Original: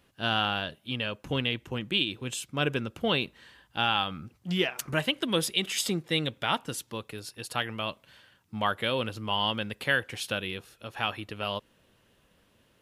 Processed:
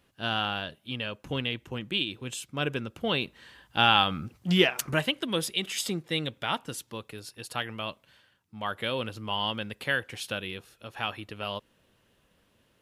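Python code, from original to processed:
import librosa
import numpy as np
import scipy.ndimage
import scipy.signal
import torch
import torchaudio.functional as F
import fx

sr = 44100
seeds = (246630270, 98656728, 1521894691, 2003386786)

y = fx.gain(x, sr, db=fx.line((3.04, -2.0), (3.88, 5.5), (4.66, 5.5), (5.23, -2.0), (7.89, -2.0), (8.55, -8.5), (8.78, -2.0)))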